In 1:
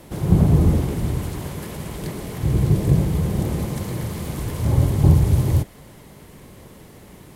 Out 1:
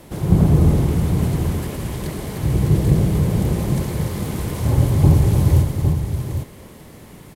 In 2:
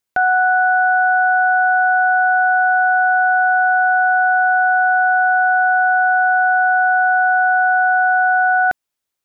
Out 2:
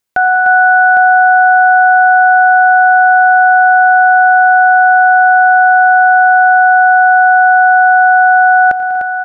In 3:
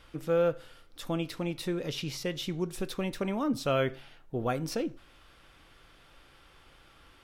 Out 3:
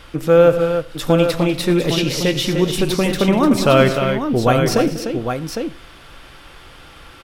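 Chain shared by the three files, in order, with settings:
tapped delay 89/114/194/241/300/807 ms -16.5/-18.5/-16/-18.5/-7.5/-7 dB; normalise peaks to -1.5 dBFS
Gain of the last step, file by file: +1.0, +4.5, +14.5 dB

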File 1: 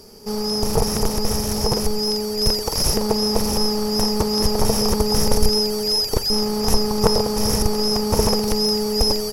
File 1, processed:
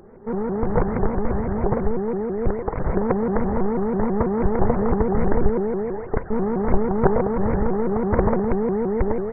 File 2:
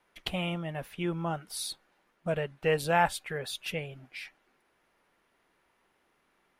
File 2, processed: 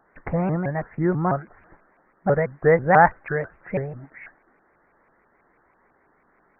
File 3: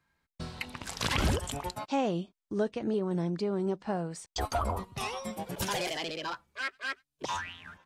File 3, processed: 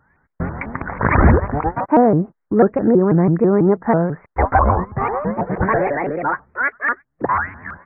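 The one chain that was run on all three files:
one-sided fold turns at -10 dBFS; steep low-pass 2000 Hz 96 dB/oct; shaped vibrato saw up 6.1 Hz, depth 250 cents; normalise peaks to -1.5 dBFS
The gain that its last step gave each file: +0.5, +10.5, +16.5 dB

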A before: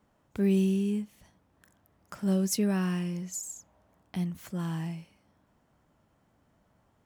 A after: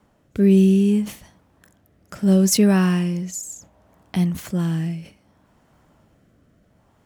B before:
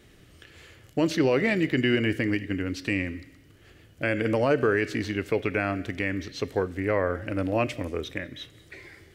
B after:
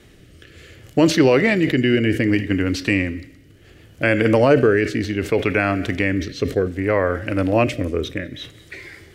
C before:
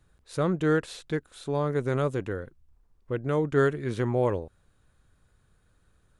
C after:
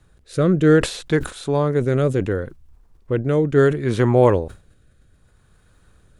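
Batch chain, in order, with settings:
rotary speaker horn 0.65 Hz; sustainer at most 150 dB/s; match loudness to -19 LUFS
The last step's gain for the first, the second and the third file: +11.5, +9.5, +11.0 dB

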